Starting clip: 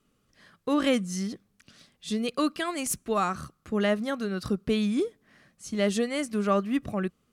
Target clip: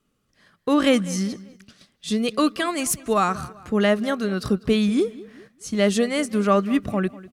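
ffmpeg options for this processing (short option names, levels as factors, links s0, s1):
-filter_complex "[0:a]asplit=2[s0][s1];[s1]adelay=197,lowpass=f=4300:p=1,volume=0.112,asplit=2[s2][s3];[s3]adelay=197,lowpass=f=4300:p=1,volume=0.42,asplit=2[s4][s5];[s5]adelay=197,lowpass=f=4300:p=1,volume=0.42[s6];[s0][s2][s4][s6]amix=inputs=4:normalize=0,agate=range=0.447:threshold=0.00224:ratio=16:detection=peak,volume=2"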